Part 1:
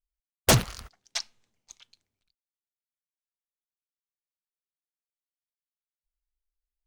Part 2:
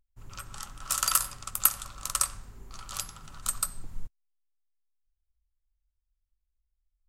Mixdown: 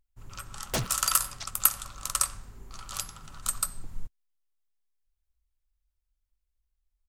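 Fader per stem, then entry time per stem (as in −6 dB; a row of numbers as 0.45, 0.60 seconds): −10.5, +0.5 decibels; 0.25, 0.00 seconds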